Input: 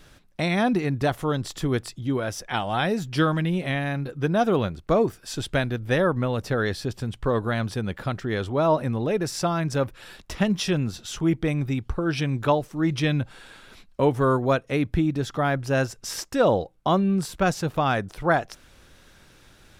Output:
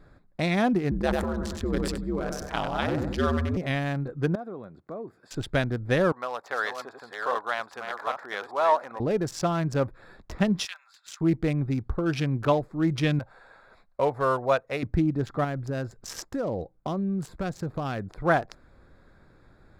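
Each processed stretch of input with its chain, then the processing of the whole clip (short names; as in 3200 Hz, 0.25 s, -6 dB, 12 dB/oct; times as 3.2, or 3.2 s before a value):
0.91–3.57 ring modulator 74 Hz + feedback echo 96 ms, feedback 42%, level -8 dB + sustainer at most 29 dB/s
4.35–5.31 compressor 2:1, threshold -44 dBFS + HPF 170 Hz
6.12–9 reverse delay 0.399 s, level -5 dB + resonant high-pass 870 Hz, resonance Q 1.8
10.65–11.21 Bessel high-pass 1700 Hz, order 8 + comb 5.1 ms, depth 39%
13.19–14.83 resonant low shelf 430 Hz -9 dB, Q 1.5 + notch 3200 Hz, Q 13
15.44–18.07 dynamic EQ 940 Hz, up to -5 dB, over -35 dBFS, Q 0.8 + compressor 4:1, threshold -24 dBFS
whole clip: Wiener smoothing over 15 samples; notch 890 Hz, Q 27; gain -1 dB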